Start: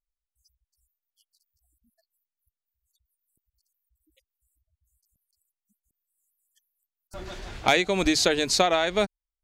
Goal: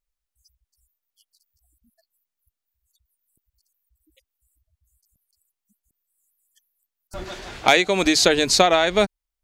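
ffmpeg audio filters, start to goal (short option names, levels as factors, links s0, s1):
-filter_complex "[0:a]asettb=1/sr,asplit=3[s0][s1][s2];[s0]atrim=end=7.244[s3];[s1]atrim=start=7.24:end=8.23,asetpts=PTS-STARTPTS,afade=t=in:d=0.004:c=qsin,afade=t=out:st=0.986:d=0.004:c=qsin,lowshelf=f=140:g=-11[s4];[s2]atrim=start=8.226[s5];[s3][s4]acrossfade=d=0.004:c1=hsin:c2=qsin[s6];[s6][s5]acrossfade=d=0.004:c1=qsin:c2=hsin,volume=1.88"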